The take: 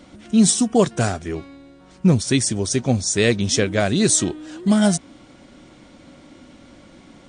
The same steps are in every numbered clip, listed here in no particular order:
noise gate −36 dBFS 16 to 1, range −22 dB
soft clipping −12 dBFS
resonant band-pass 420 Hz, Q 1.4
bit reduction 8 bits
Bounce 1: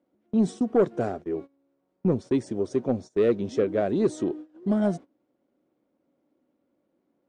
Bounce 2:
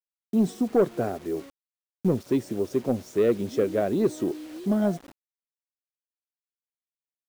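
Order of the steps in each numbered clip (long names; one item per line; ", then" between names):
bit reduction, then resonant band-pass, then soft clipping, then noise gate
noise gate, then resonant band-pass, then soft clipping, then bit reduction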